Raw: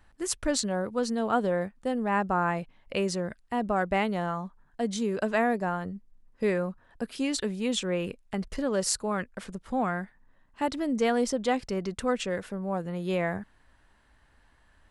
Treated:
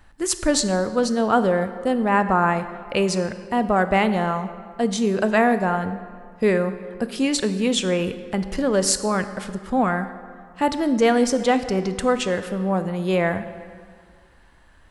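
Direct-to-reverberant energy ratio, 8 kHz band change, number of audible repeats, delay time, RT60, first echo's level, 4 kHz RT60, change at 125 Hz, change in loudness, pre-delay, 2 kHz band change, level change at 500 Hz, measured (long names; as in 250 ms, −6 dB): 10.5 dB, +7.5 dB, no echo audible, no echo audible, 2.0 s, no echo audible, 1.3 s, +8.0 dB, +8.0 dB, 19 ms, +8.0 dB, +8.0 dB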